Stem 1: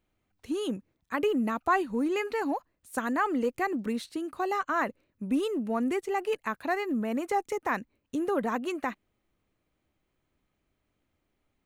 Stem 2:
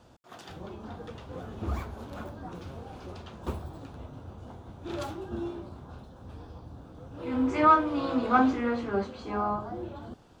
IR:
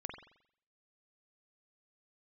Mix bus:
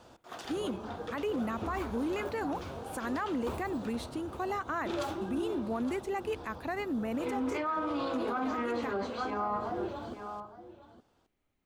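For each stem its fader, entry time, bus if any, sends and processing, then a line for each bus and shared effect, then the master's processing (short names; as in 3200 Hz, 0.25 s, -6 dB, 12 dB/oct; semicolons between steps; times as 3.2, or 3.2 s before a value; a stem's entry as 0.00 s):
-3.5 dB, 0.00 s, no send, no echo send, dry
+2.0 dB, 0.00 s, send -9.5 dB, echo send -13.5 dB, tone controls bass -8 dB, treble 0 dB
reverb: on, RT60 0.65 s, pre-delay 44 ms
echo: echo 0.864 s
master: limiter -25.5 dBFS, peak gain reduction 19.5 dB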